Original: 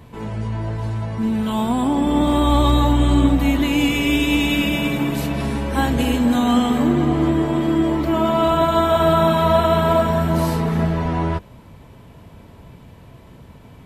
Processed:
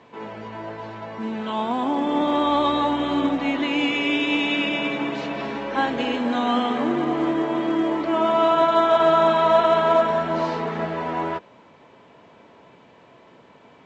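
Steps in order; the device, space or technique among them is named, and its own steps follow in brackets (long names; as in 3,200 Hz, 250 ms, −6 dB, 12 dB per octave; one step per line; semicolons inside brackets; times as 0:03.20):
telephone (band-pass filter 360–3,500 Hz; A-law companding 128 kbit/s 16,000 Hz)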